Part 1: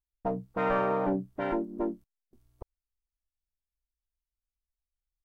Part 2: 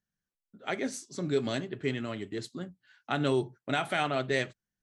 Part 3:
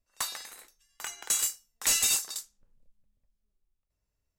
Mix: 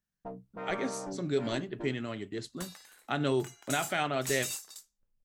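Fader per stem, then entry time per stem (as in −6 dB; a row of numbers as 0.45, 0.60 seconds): −11.5, −1.5, −11.5 decibels; 0.00, 0.00, 2.40 seconds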